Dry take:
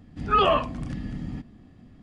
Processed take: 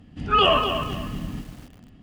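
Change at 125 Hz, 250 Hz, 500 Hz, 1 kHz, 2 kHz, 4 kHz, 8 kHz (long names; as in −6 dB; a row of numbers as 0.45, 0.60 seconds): +1.5 dB, +1.0 dB, +2.0 dB, +2.0 dB, +5.5 dB, +10.0 dB, can't be measured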